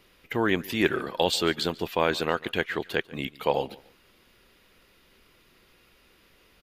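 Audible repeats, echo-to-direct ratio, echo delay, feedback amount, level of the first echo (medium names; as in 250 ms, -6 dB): 2, -21.0 dB, 144 ms, 27%, -21.5 dB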